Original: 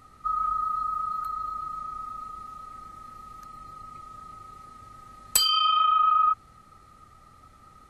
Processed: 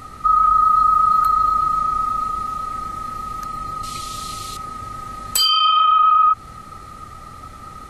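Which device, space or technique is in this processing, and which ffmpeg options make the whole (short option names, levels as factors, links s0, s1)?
loud club master: -filter_complex "[0:a]acompressor=threshold=0.0501:ratio=2,asoftclip=type=hard:threshold=0.224,alimiter=level_in=15:limit=0.891:release=50:level=0:latency=1,asettb=1/sr,asplit=3[s0][s1][s2];[s0]atrim=end=3.834[s3];[s1]atrim=start=3.83:end=4.57,asetpts=PTS-STARTPTS,afade=t=in:d=0.004:c=qsin,afade=t=out:st=0.736:d=0.004:c=qsin,highshelf=f=2400:t=q:w=1.5:g=13[s4];[s2]atrim=start=4.566[s5];[s3][s4]acrossfade=d=0.004:c1=hsin:c2=qsin[s6];[s6][s5]acrossfade=d=0.004:c1=qsin:c2=hsin,volume=0.422"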